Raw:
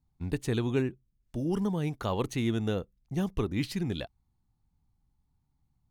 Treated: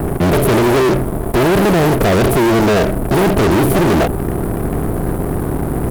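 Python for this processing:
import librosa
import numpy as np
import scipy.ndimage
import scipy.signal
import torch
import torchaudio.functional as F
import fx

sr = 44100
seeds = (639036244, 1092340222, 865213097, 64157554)

y = fx.bin_compress(x, sr, power=0.4)
y = scipy.signal.sosfilt(scipy.signal.cheby1(4, 1.0, [620.0, 8100.0], 'bandstop', fs=sr, output='sos'), y)
y = fx.formant_shift(y, sr, semitones=3)
y = fx.fuzz(y, sr, gain_db=41.0, gate_db=-49.0)
y = y * 10.0 ** (2.5 / 20.0)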